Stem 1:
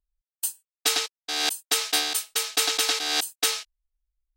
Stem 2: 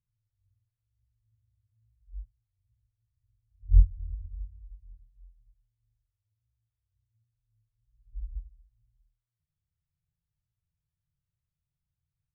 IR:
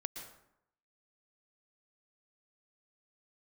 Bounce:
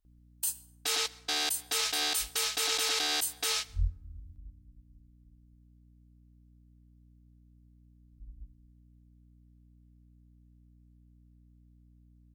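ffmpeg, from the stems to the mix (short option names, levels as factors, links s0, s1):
-filter_complex "[0:a]alimiter=limit=0.158:level=0:latency=1,volume=1.33,asplit=2[s0][s1];[s1]volume=0.106[s2];[1:a]highpass=f=160:p=1,aeval=exprs='val(0)+0.00126*(sin(2*PI*60*n/s)+sin(2*PI*2*60*n/s)/2+sin(2*PI*3*60*n/s)/3+sin(2*PI*4*60*n/s)/4+sin(2*PI*5*60*n/s)/5)':c=same,adelay=50,volume=1[s3];[2:a]atrim=start_sample=2205[s4];[s2][s4]afir=irnorm=-1:irlink=0[s5];[s0][s3][s5]amix=inputs=3:normalize=0,alimiter=limit=0.0944:level=0:latency=1:release=18"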